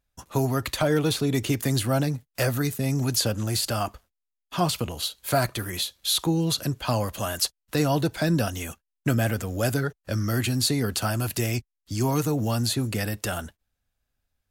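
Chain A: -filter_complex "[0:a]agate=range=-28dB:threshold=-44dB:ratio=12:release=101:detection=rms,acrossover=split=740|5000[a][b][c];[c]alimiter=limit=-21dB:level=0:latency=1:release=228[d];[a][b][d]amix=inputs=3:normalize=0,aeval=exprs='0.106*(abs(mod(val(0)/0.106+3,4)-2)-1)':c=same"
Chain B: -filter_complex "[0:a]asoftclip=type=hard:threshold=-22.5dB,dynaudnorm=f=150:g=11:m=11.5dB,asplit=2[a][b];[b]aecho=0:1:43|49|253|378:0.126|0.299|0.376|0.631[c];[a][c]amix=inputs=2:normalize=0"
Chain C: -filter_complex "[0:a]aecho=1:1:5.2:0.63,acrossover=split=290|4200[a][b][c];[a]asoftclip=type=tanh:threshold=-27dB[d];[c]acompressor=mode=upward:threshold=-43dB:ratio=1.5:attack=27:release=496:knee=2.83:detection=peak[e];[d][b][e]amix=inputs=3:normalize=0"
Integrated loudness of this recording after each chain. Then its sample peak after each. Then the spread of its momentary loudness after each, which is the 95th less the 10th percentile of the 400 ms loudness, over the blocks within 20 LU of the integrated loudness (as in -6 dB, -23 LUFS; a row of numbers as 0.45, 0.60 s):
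-27.5, -14.5, -26.5 LUFS; -19.5, -3.5, -8.5 dBFS; 5, 6, 7 LU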